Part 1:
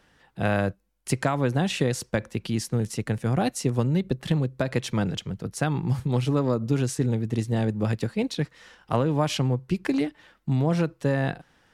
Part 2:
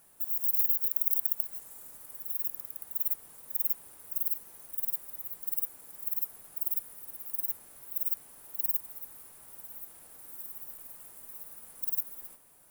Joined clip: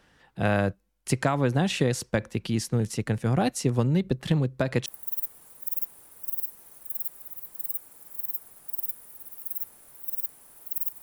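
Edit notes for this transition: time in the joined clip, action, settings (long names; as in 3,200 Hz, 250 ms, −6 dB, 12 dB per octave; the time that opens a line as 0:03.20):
part 1
0:04.86: continue with part 2 from 0:02.74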